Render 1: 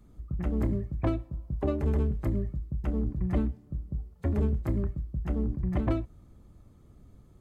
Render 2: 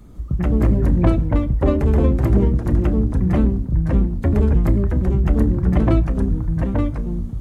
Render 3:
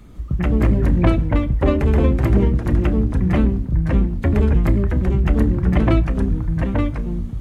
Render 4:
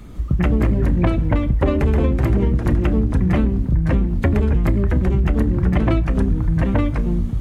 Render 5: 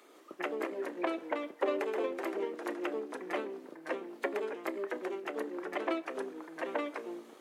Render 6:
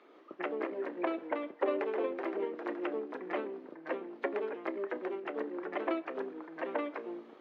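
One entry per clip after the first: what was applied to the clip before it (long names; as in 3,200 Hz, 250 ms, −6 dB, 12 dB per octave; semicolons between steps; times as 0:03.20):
in parallel at −1 dB: brickwall limiter −26 dBFS, peak gain reduction 9.5 dB; on the sum: delay with pitch and tempo change per echo 155 ms, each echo −2 semitones, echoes 2; level +7 dB
parametric band 2,500 Hz +7.5 dB 1.6 octaves
downward compressor, threshold −18 dBFS, peak gain reduction 9 dB; level +5 dB
Butterworth high-pass 350 Hz 36 dB per octave; level −8.5 dB
high-frequency loss of the air 290 metres; level +1 dB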